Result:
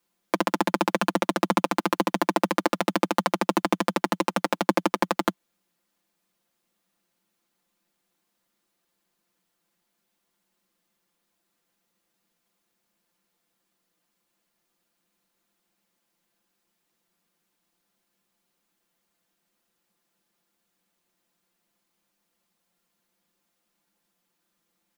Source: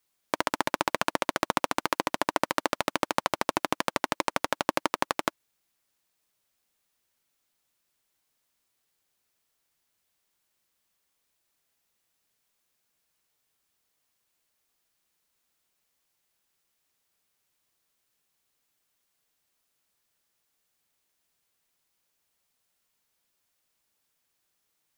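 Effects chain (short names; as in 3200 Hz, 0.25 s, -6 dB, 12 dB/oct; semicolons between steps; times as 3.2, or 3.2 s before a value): steep high-pass 180 Hz 72 dB/oct; tone controls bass +14 dB, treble -3 dB; in parallel at -10 dB: sample-rate reducer 3300 Hz, jitter 0%; on the sum: comb 5.8 ms, depth 66%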